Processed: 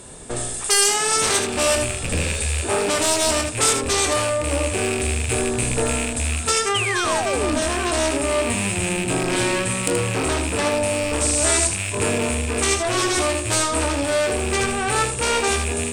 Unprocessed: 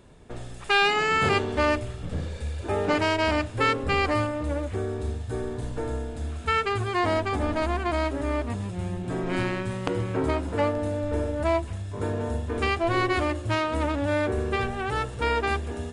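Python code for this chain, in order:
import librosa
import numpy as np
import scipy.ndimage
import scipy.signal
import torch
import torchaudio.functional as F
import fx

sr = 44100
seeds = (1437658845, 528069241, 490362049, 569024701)

p1 = fx.rattle_buzz(x, sr, strikes_db=-31.0, level_db=-25.0)
p2 = fx.fold_sine(p1, sr, drive_db=14, ceiling_db=-6.5)
p3 = fx.dmg_noise_band(p2, sr, seeds[0], low_hz=3400.0, high_hz=8800.0, level_db=-27.0, at=(11.2, 11.67), fade=0.02)
p4 = p3 + fx.room_early_taps(p3, sr, ms=(25, 79), db=(-8.0, -7.0), dry=0)
p5 = fx.spec_paint(p4, sr, seeds[1], shape='fall', start_s=6.74, length_s=0.86, low_hz=240.0, high_hz=3300.0, level_db=-12.0)
p6 = fx.peak_eq(p5, sr, hz=8600.0, db=14.0, octaves=0.44)
p7 = fx.rider(p6, sr, range_db=4, speed_s=0.5)
p8 = fx.bass_treble(p7, sr, bass_db=-5, treble_db=8)
y = F.gain(torch.from_numpy(p8), -11.0).numpy()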